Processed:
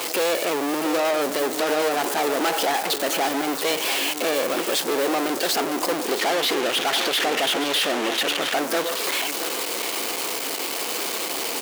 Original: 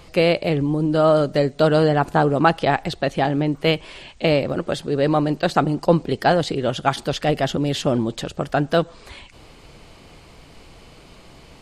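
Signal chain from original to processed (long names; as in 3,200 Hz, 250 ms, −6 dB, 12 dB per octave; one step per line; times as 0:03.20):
spike at every zero crossing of −10.5 dBFS
0:06.19–0:08.54: low-pass filter 3,400 Hz 24 dB per octave
power curve on the samples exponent 0.5
notch filter 590 Hz, Q 13
soft clipping −18 dBFS, distortion −7 dB
high-pass filter 310 Hz 24 dB per octave
single-tap delay 679 ms −10 dB
level −1.5 dB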